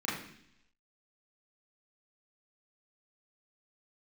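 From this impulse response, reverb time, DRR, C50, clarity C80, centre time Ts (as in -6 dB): 0.70 s, -8.5 dB, 4.0 dB, 7.5 dB, 50 ms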